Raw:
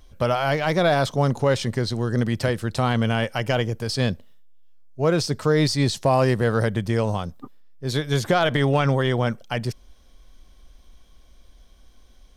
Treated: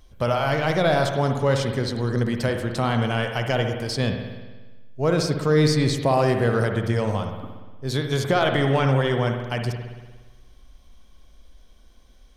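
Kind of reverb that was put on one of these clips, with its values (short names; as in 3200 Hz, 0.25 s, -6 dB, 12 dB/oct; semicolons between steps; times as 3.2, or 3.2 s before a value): spring tank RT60 1.3 s, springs 59 ms, chirp 45 ms, DRR 4.5 dB; gain -1.5 dB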